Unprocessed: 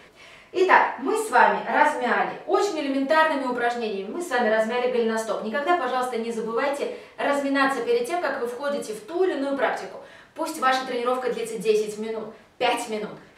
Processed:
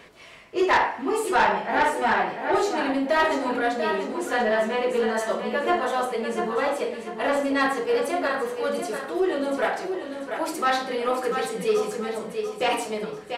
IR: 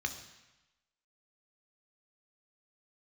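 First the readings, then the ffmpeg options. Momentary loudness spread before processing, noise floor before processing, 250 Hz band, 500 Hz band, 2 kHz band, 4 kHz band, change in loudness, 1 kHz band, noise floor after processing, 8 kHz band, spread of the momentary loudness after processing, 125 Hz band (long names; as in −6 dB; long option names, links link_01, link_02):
12 LU, −50 dBFS, −0.5 dB, −0.5 dB, −1.0 dB, 0.0 dB, −1.0 dB, −1.0 dB, −40 dBFS, +0.5 dB, 8 LU, can't be measured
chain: -af "aecho=1:1:691|1382|2073|2764:0.398|0.143|0.0516|0.0186,asoftclip=type=tanh:threshold=-13.5dB"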